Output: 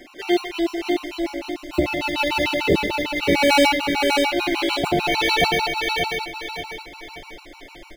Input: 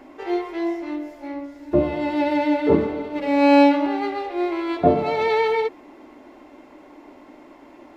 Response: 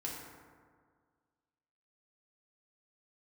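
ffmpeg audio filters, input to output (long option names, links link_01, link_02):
-filter_complex "[0:a]highshelf=frequency=1900:width_type=q:width=1.5:gain=12.5,aecho=1:1:5.7:0.54,asubboost=boost=9.5:cutoff=65,asplit=2[link_01][link_02];[link_02]acrusher=samples=11:mix=1:aa=0.000001,volume=-10.5dB[link_03];[link_01][link_03]amix=inputs=2:normalize=0,aeval=exprs='0.531*(abs(mod(val(0)/0.531+3,4)-2)-1)':channel_layout=same,asplit=2[link_04][link_05];[link_05]aecho=0:1:578|1156|1734|2312|2890:0.631|0.24|0.0911|0.0346|0.0132[link_06];[link_04][link_06]amix=inputs=2:normalize=0,afftfilt=real='re*gt(sin(2*PI*6.7*pts/sr)*(1-2*mod(floor(b*sr/1024/760),2)),0)':imag='im*gt(sin(2*PI*6.7*pts/sr)*(1-2*mod(floor(b*sr/1024/760),2)),0)':win_size=1024:overlap=0.75"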